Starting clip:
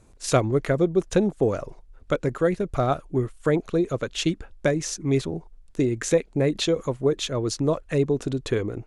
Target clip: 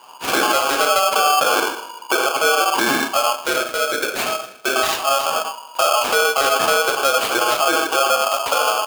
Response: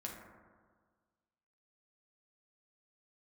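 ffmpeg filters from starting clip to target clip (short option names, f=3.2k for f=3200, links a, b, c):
-filter_complex "[0:a]asettb=1/sr,asplit=3[a][b][c];[a]atrim=end=3.354[d];[b]atrim=start=3.35:end=4.76,asetpts=PTS-STARTPTS,afade=t=in:d=0.004:c=qsin,afade=t=out:st=1.406:d=0.004:c=qsin,highpass=590[e];[c]atrim=start=4.756[f];[d][e]acrossfade=d=0.004:c1=hsin:c2=qsin[g];[g][f]acrossfade=d=0.004:c1=qsin:c2=hsin,asplit=2[h][i];[i]acompressor=threshold=-30dB:ratio=6,volume=-1.5dB[j];[h][j]amix=inputs=2:normalize=0,acrusher=samples=9:mix=1:aa=0.000001:lfo=1:lforange=9:lforate=0.35,asuperstop=centerf=1000:order=4:qfactor=2,aecho=1:1:157|314|471:0.106|0.0403|0.0153[k];[1:a]atrim=start_sample=2205,afade=t=out:st=0.19:d=0.01,atrim=end_sample=8820,asetrate=42336,aresample=44100[l];[k][l]afir=irnorm=-1:irlink=0,alimiter=level_in=16dB:limit=-1dB:release=50:level=0:latency=1,aeval=exprs='val(0)*sgn(sin(2*PI*960*n/s))':c=same,volume=-8dB"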